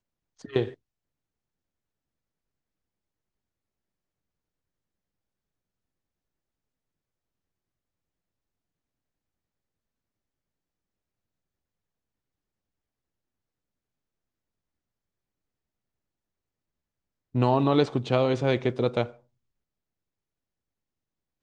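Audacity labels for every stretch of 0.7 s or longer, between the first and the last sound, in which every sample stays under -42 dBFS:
0.740000	17.350000	silence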